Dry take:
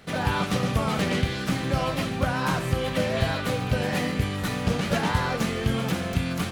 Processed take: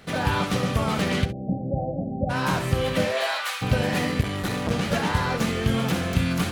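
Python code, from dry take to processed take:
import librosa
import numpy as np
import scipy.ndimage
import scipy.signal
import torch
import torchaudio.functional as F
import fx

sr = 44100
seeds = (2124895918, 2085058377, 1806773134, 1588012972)

y = fx.highpass(x, sr, hz=fx.line((3.05, 360.0), (3.61, 1200.0)), slope=24, at=(3.05, 3.61), fade=0.02)
y = fx.rider(y, sr, range_db=10, speed_s=0.5)
y = fx.cheby_ripple(y, sr, hz=800.0, ripple_db=6, at=(1.24, 2.29), fade=0.02)
y = fx.room_early_taps(y, sr, ms=(58, 68), db=(-14.5, -13.5))
y = fx.transformer_sat(y, sr, knee_hz=620.0, at=(4.21, 4.71))
y = y * librosa.db_to_amplitude(1.5)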